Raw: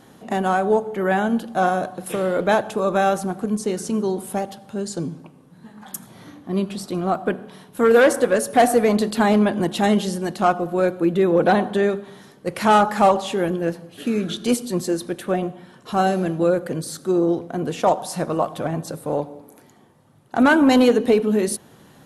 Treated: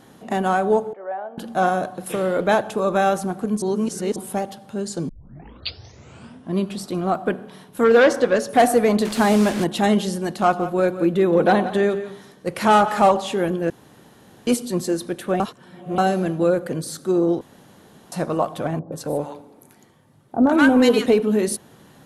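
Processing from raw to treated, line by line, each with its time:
0.93–1.38 ladder band-pass 730 Hz, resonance 50%
3.62–4.16 reverse
5.09 tape start 1.49 s
7.84–8.49 resonant high shelf 7300 Hz -10 dB, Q 1.5
9.05–9.64 delta modulation 64 kbps, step -23.5 dBFS
10.24–13.05 echo 0.173 s -13.5 dB
13.7–14.47 room tone
15.4–15.98 reverse
17.41–18.12 room tone
18.79–21.06 bands offset in time lows, highs 0.13 s, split 920 Hz

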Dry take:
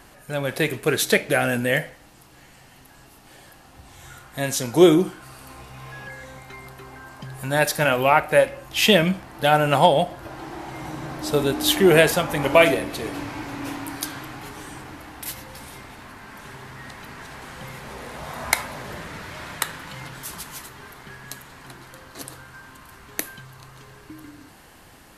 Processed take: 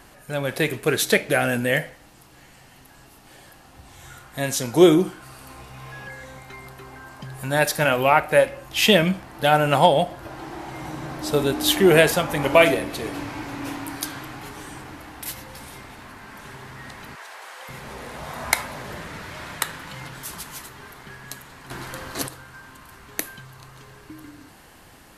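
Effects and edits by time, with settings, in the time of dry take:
17.15–17.69 HPF 500 Hz 24 dB/oct
21.71–22.28 gain +9 dB

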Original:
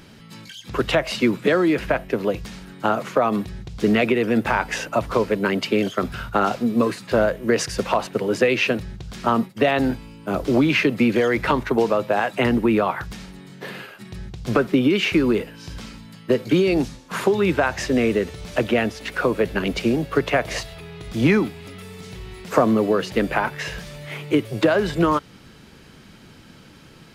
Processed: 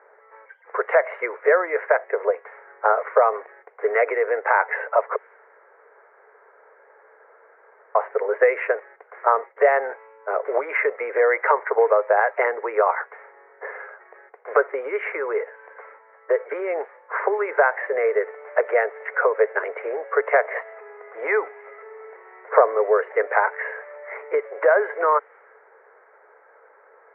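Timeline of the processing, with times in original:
5.16–7.95 room tone
whole clip: low-pass opened by the level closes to 1300 Hz, open at -18.5 dBFS; Chebyshev band-pass 430–2100 Hz, order 5; gain +3.5 dB

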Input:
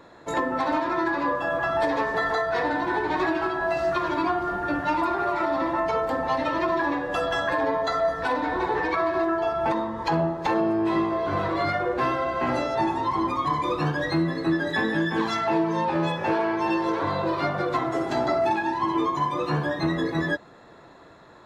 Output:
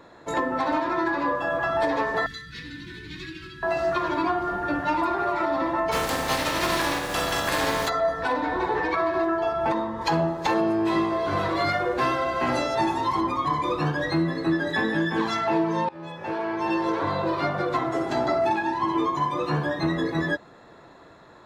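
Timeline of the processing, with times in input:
2.26–3.63 Chebyshev band-stop 170–3000 Hz
5.91–7.88 spectral contrast lowered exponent 0.44
10.01–13.21 high shelf 3600 Hz +9.5 dB
15.89–16.8 fade in, from -23.5 dB

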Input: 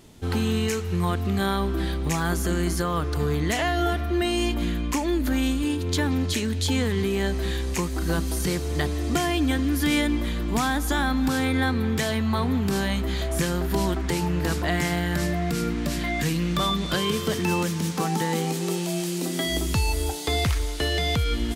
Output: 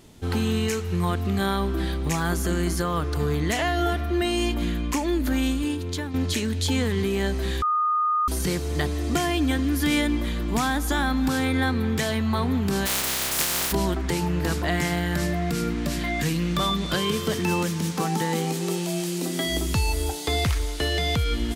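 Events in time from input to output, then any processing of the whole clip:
5.39–6.14 fade out equal-power, to -10.5 dB
7.62–8.28 bleep 1230 Hz -19.5 dBFS
12.85–13.71 spectral contrast lowered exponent 0.14

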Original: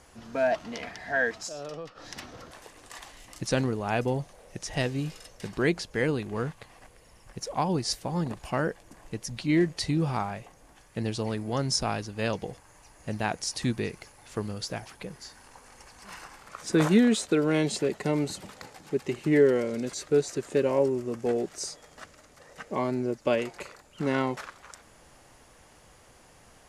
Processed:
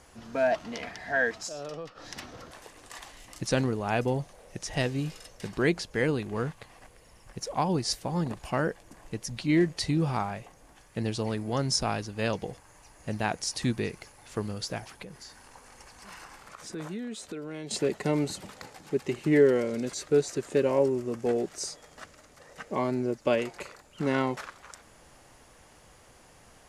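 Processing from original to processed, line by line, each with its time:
15.02–17.71 compressor 2.5:1, threshold -42 dBFS

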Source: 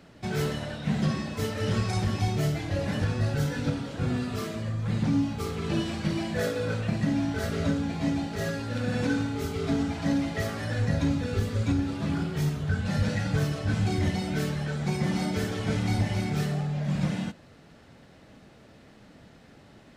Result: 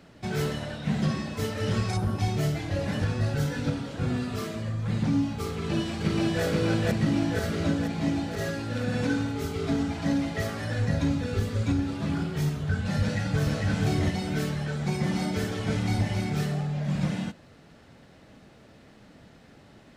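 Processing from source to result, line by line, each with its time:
1.97–2.19 spectral gain 1600–8600 Hz -10 dB
5.52–6.43 echo throw 0.48 s, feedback 65%, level -0.5 dB
13.01–13.65 echo throw 0.45 s, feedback 25%, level -3 dB

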